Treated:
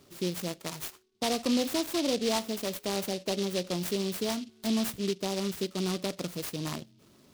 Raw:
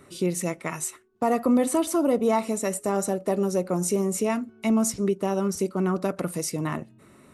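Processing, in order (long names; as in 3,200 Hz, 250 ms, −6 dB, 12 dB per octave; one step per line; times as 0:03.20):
short delay modulated by noise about 3,800 Hz, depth 0.14 ms
level −6.5 dB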